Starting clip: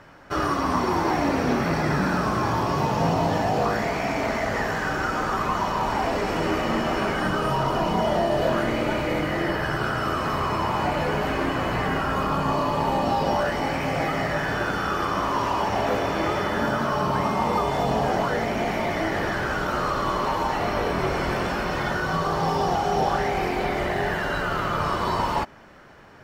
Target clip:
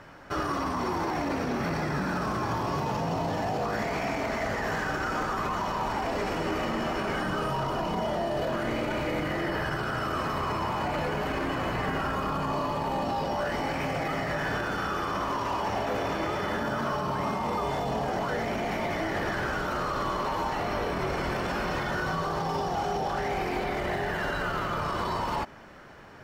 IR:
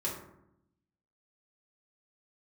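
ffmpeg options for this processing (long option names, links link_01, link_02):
-af "alimiter=limit=-21.5dB:level=0:latency=1:release=39"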